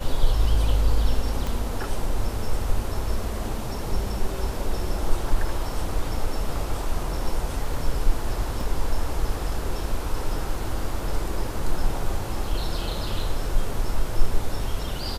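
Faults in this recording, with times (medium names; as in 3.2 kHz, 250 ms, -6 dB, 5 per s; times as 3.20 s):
1.47 s: pop
8.61 s: dropout 2.3 ms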